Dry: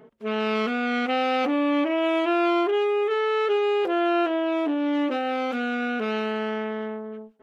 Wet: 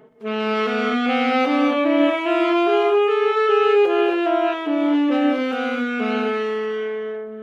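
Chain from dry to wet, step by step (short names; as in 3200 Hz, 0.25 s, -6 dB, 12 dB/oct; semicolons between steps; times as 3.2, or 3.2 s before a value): notches 60/120/180/240 Hz; non-linear reverb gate 0.3 s rising, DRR -0.5 dB; gain +1.5 dB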